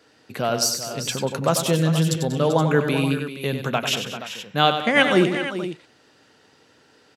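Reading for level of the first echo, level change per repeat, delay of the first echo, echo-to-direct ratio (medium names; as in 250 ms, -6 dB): -8.5 dB, no regular repeats, 95 ms, -5.0 dB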